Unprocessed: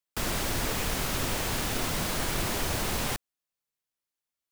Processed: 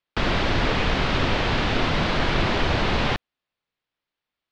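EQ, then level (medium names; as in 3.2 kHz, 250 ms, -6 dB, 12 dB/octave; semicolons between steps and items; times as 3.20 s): low-pass 4 kHz 24 dB/octave; +9.0 dB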